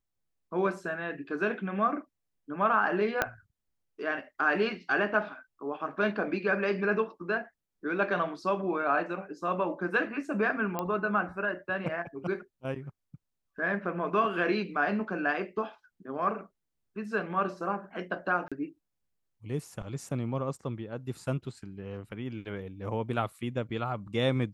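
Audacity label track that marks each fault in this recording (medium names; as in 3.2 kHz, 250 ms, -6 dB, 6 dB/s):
3.220000	3.220000	pop -11 dBFS
10.790000	10.790000	pop -17 dBFS
18.480000	18.520000	dropout 36 ms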